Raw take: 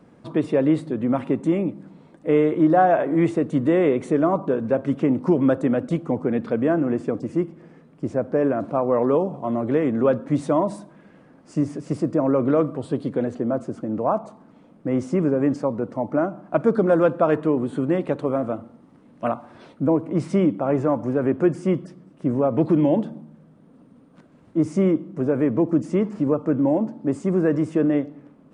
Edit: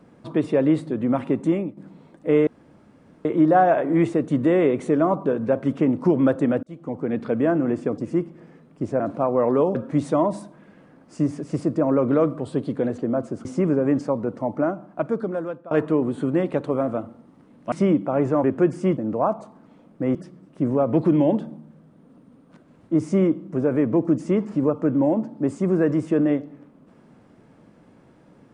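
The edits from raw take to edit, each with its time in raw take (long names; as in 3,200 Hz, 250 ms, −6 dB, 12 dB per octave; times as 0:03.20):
0:01.51–0:01.77: fade out, to −12 dB
0:02.47: splice in room tone 0.78 s
0:05.85–0:06.69: fade in equal-power
0:08.22–0:08.54: remove
0:09.29–0:10.12: remove
0:13.82–0:15.00: move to 0:21.79
0:16.05–0:17.26: fade out, to −24 dB
0:19.27–0:20.25: remove
0:20.97–0:21.26: remove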